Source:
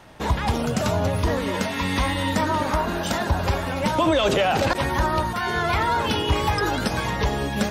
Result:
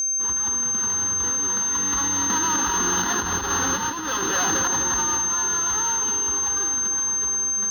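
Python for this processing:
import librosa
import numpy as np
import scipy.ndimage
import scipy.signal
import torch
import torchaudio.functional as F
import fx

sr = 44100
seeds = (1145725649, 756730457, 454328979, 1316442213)

y = fx.halfwave_hold(x, sr)
y = fx.doppler_pass(y, sr, speed_mps=9, closest_m=4.1, pass_at_s=3.43)
y = np.clip(10.0 ** (15.5 / 20.0) * y, -1.0, 1.0) / 10.0 ** (15.5 / 20.0)
y = fx.bass_treble(y, sr, bass_db=-12, treble_db=-12)
y = fx.fixed_phaser(y, sr, hz=2300.0, stages=6)
y = fx.echo_split(y, sr, split_hz=1500.0, low_ms=257, high_ms=162, feedback_pct=52, wet_db=-10)
y = y + 10.0 ** (-28.0 / 20.0) * np.sin(2.0 * np.pi * 6300.0 * np.arange(len(y)) / sr)
y = fx.over_compress(y, sr, threshold_db=-28.0, ratio=-0.5)
y = fx.low_shelf(y, sr, hz=150.0, db=-6.5)
y = F.gain(torch.from_numpy(y), 6.5).numpy()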